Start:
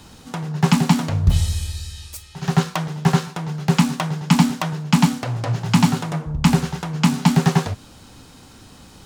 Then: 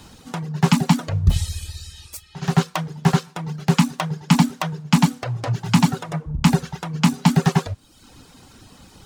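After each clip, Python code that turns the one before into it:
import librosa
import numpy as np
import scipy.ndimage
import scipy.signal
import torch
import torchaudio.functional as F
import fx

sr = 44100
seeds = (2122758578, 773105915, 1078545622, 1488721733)

y = fx.dereverb_blind(x, sr, rt60_s=0.77)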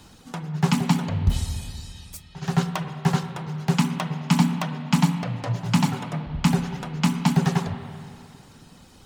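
y = fx.rev_spring(x, sr, rt60_s=2.4, pass_ms=(46, 52, 58), chirp_ms=25, drr_db=7.5)
y = y * 10.0 ** (-4.5 / 20.0)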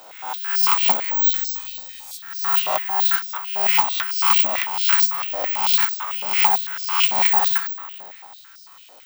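y = fx.spec_swells(x, sr, rise_s=0.87)
y = (np.kron(scipy.signal.resample_poly(y, 1, 2), np.eye(2)[0]) * 2)[:len(y)]
y = fx.filter_held_highpass(y, sr, hz=9.0, low_hz=610.0, high_hz=5100.0)
y = y * 10.0 ** (-1.5 / 20.0)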